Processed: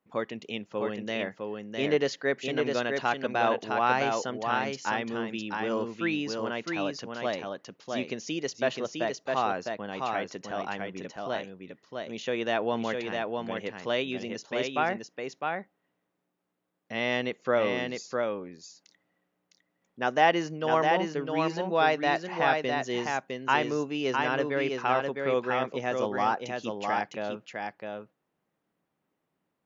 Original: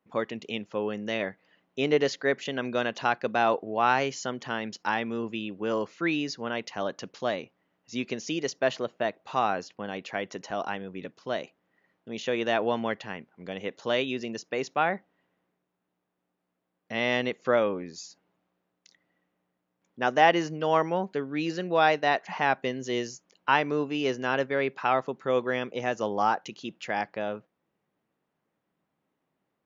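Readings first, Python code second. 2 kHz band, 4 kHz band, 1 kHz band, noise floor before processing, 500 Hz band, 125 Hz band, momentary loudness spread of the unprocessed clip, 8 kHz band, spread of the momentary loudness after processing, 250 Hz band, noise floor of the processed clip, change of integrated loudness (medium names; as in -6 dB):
-0.5 dB, -0.5 dB, -0.5 dB, -81 dBFS, -0.5 dB, -0.5 dB, 11 LU, no reading, 10 LU, -0.5 dB, -81 dBFS, -1.0 dB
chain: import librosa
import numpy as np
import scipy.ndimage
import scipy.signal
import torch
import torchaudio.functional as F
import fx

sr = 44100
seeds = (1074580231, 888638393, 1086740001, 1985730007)

y = x + 10.0 ** (-4.0 / 20.0) * np.pad(x, (int(657 * sr / 1000.0), 0))[:len(x)]
y = F.gain(torch.from_numpy(y), -2.0).numpy()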